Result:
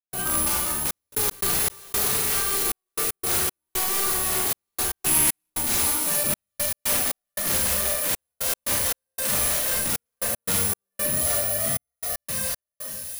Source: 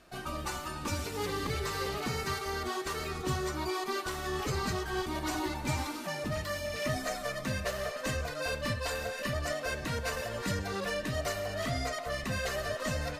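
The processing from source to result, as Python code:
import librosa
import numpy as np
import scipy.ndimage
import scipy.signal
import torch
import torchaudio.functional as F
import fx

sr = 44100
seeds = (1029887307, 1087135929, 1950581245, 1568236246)

y = fx.fade_out_tail(x, sr, length_s=3.26)
y = fx.high_shelf(y, sr, hz=4000.0, db=11.0, at=(12.09, 12.61))
y = (np.kron(y[::4], np.eye(4)[0]) * 4)[:len(y)]
y = (np.mod(10.0 ** (15.0 / 20.0) * y + 1.0, 2.0) - 1.0) / 10.0 ** (15.0 / 20.0)
y = fx.rev_schroeder(y, sr, rt60_s=0.6, comb_ms=32, drr_db=-3.5)
y = fx.rider(y, sr, range_db=4, speed_s=0.5)
y = fx.graphic_eq_15(y, sr, hz=(160, 2500, 10000), db=(9, 7, 9), at=(5.06, 5.5))
y = fx.echo_wet_highpass(y, sr, ms=733, feedback_pct=50, hz=3300.0, wet_db=-8.0)
y = fx.step_gate(y, sr, bpm=116, pattern='.xxxxxx..x.xx.', floor_db=-60.0, edge_ms=4.5)
y = fx.env_flatten(y, sr, amount_pct=100, at=(1.12, 2.08))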